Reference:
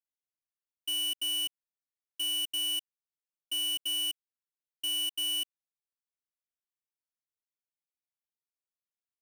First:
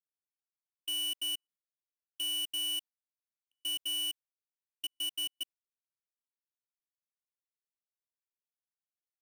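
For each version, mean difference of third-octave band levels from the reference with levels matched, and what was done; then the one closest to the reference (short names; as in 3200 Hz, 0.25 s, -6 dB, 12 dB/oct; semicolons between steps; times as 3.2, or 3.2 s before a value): 4.0 dB: gate with hold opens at -34 dBFS; step gate ".xxxxxxxxx.xx" 111 bpm -60 dB; gain -2.5 dB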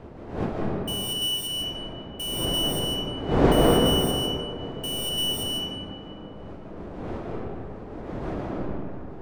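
15.5 dB: wind noise 440 Hz -33 dBFS; digital reverb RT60 2.8 s, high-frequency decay 0.5×, pre-delay 0.11 s, DRR -2.5 dB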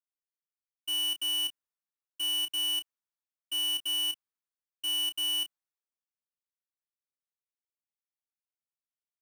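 2.0 dB: bell 1200 Hz +6.5 dB 1.1 oct; doubler 29 ms -9 dB; three-band expander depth 40%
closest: third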